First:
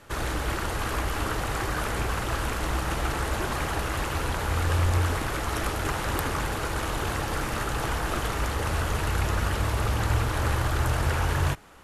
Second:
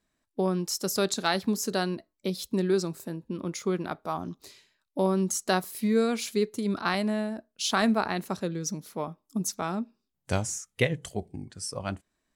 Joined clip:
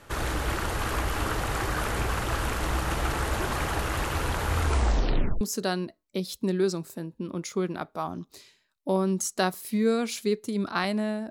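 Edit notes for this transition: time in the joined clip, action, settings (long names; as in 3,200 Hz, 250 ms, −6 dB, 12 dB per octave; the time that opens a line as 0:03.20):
first
0:04.59: tape stop 0.82 s
0:05.41: continue with second from 0:01.51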